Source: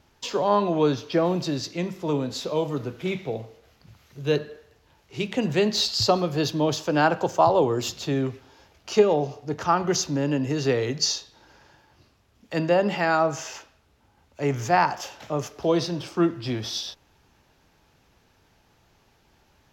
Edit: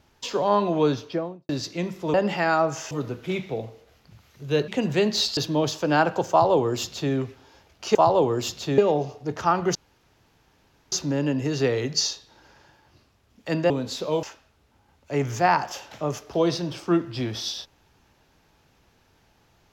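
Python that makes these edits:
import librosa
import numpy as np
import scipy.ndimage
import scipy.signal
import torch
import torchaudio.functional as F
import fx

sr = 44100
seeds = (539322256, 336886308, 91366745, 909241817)

y = fx.studio_fade_out(x, sr, start_s=0.91, length_s=0.58)
y = fx.edit(y, sr, fx.swap(start_s=2.14, length_s=0.53, other_s=12.75, other_length_s=0.77),
    fx.cut(start_s=4.44, length_s=0.84),
    fx.cut(start_s=5.97, length_s=0.45),
    fx.duplicate(start_s=7.35, length_s=0.83, to_s=9.0),
    fx.insert_room_tone(at_s=9.97, length_s=1.17), tone=tone)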